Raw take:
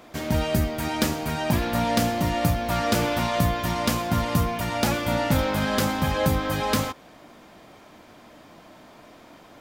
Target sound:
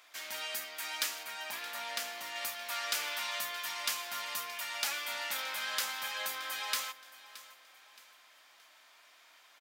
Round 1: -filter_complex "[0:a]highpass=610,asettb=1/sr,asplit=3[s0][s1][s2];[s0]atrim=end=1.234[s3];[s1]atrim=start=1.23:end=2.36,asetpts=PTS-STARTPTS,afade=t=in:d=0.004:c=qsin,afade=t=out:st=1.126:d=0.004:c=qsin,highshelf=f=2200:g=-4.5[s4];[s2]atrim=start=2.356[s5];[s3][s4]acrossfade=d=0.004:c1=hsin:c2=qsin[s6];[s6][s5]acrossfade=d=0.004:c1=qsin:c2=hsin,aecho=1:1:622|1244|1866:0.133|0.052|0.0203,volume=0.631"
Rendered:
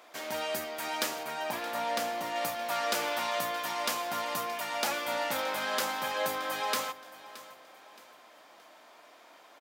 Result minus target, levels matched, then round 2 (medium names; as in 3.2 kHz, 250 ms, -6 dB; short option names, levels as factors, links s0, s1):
500 Hz band +11.5 dB
-filter_complex "[0:a]highpass=1700,asettb=1/sr,asplit=3[s0][s1][s2];[s0]atrim=end=1.234[s3];[s1]atrim=start=1.23:end=2.36,asetpts=PTS-STARTPTS,afade=t=in:d=0.004:c=qsin,afade=t=out:st=1.126:d=0.004:c=qsin,highshelf=f=2200:g=-4.5[s4];[s2]atrim=start=2.356[s5];[s3][s4]acrossfade=d=0.004:c1=hsin:c2=qsin[s6];[s6][s5]acrossfade=d=0.004:c1=qsin:c2=hsin,aecho=1:1:622|1244|1866:0.133|0.052|0.0203,volume=0.631"